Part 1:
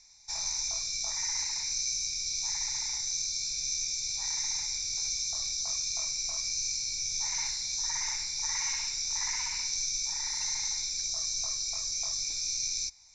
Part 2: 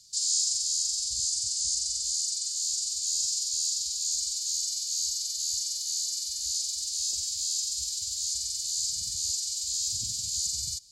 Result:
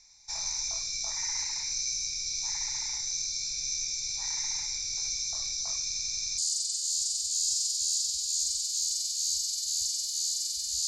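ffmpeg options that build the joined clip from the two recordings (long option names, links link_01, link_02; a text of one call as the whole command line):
ffmpeg -i cue0.wav -i cue1.wav -filter_complex "[0:a]apad=whole_dur=10.87,atrim=end=10.87,asplit=6[link_01][link_02][link_03][link_04][link_05][link_06];[link_01]atrim=end=5.932[link_07];[link_02]atrim=start=5.838:end=5.932[link_08];[link_03]atrim=start=5.838:end=5.932[link_09];[link_04]atrim=start=5.838:end=5.932[link_10];[link_05]atrim=start=5.838:end=5.932[link_11];[link_06]atrim=start=5.838:end=5.932[link_12];[1:a]atrim=start=2.098:end=6.59[link_13];[link_07][link_08]acrossfade=duration=0.004:curve1=hsin:curve2=hsin[link_14];[link_14][link_09]acrossfade=duration=0.004:curve1=hsin:curve2=hsin[link_15];[link_15][link_10]acrossfade=duration=0.004:curve1=hsin:curve2=hsin[link_16];[link_16][link_11]acrossfade=duration=0.004:curve1=hsin:curve2=hsin[link_17];[link_17][link_12]acrossfade=duration=0.004:curve1=hsin:curve2=hsin[link_18];[link_18][link_13]acrossfade=duration=0.004:curve1=hsin:curve2=hsin" out.wav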